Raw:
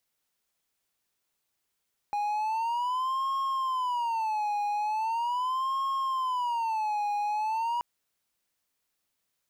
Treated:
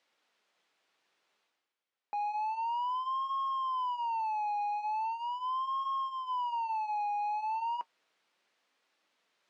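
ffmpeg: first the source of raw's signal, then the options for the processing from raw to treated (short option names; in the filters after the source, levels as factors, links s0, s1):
-f lavfi -i "aevalsrc='0.0596*(1-4*abs(mod((952.5*t-127.5/(2*PI*0.4)*sin(2*PI*0.4*t))+0.25,1)-0.5))':d=5.68:s=44100"
-af "areverse,acompressor=mode=upward:threshold=0.00282:ratio=2.5,areverse,flanger=delay=3.5:depth=2.8:regen=-62:speed=0.56:shape=sinusoidal,highpass=320,lowpass=3500"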